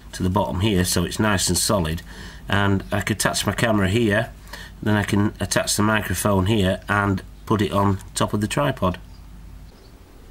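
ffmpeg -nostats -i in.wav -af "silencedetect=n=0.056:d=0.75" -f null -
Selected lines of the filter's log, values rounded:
silence_start: 8.95
silence_end: 10.30 | silence_duration: 1.35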